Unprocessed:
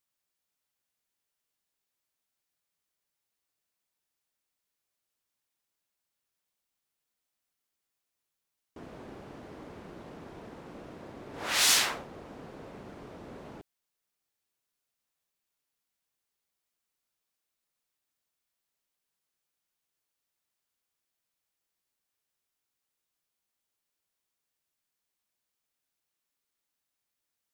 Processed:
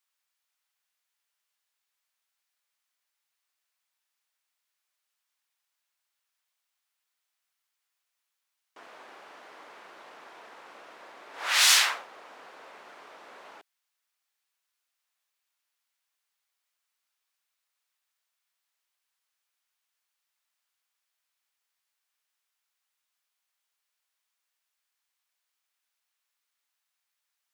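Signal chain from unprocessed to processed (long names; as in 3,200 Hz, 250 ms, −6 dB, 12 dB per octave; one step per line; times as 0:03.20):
high-pass filter 1,000 Hz 12 dB per octave
high-shelf EQ 5,100 Hz −6 dB
level +6.5 dB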